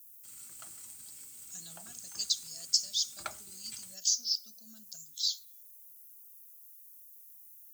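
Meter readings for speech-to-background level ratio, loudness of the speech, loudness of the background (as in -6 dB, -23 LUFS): 14.5 dB, -32.5 LUFS, -47.0 LUFS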